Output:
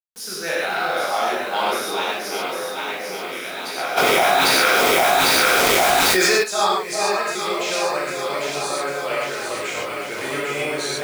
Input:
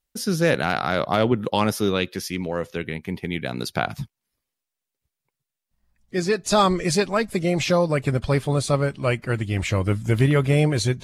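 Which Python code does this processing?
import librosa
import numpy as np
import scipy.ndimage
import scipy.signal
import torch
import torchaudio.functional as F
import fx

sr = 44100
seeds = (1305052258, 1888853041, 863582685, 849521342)

y = scipy.signal.sosfilt(scipy.signal.butter(2, 620.0, 'highpass', fs=sr, output='sos'), x)
y = fx.echo_alternate(y, sr, ms=400, hz=1100.0, feedback_pct=76, wet_db=-2.5)
y = fx.rev_gated(y, sr, seeds[0], gate_ms=170, shape='flat', drr_db=-7.0)
y = fx.quant_dither(y, sr, seeds[1], bits=6, dither='none')
y = fx.env_flatten(y, sr, amount_pct=100, at=(3.96, 6.42), fade=0.02)
y = y * 10.0 ** (-6.0 / 20.0)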